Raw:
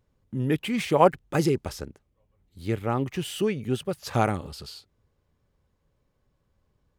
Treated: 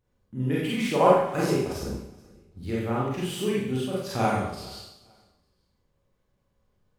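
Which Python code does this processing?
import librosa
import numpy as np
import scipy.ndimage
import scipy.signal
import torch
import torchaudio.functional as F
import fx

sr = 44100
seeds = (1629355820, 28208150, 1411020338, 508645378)

y = fx.tilt_shelf(x, sr, db=10.0, hz=880.0, at=(1.82, 2.63))
y = fx.echo_feedback(y, sr, ms=429, feedback_pct=24, wet_db=-23.5)
y = fx.rev_schroeder(y, sr, rt60_s=0.74, comb_ms=31, drr_db=-6.5)
y = F.gain(torch.from_numpy(y), -7.0).numpy()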